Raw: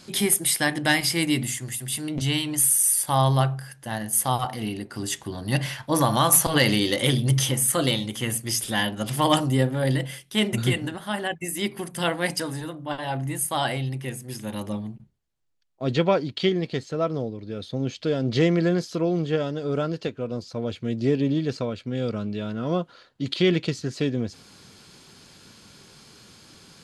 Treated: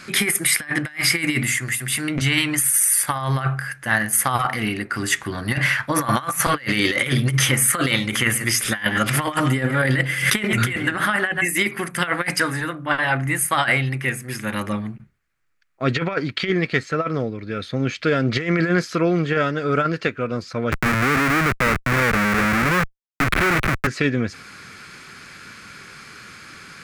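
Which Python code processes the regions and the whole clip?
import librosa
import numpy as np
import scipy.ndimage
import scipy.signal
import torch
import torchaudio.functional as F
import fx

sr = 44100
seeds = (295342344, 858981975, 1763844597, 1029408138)

y = fx.chain(x, sr, fx.echo_single(ms=134, db=-18.5),
    fx.pre_swell(db_per_s=81.0), at=(8.07, 11.71))
y = fx.chain(y, sr, fx.median_filter(points=9),
    fx.schmitt(flips_db=-34.5),
    fx.band_squash(depth_pct=40), at=(20.72, 23.87))
y = fx.band_shelf(y, sr, hz=1700.0, db=13.0, octaves=1.3)
y = fx.over_compress(y, sr, threshold_db=-21.0, ratio=-0.5)
y = y * librosa.db_to_amplitude(2.5)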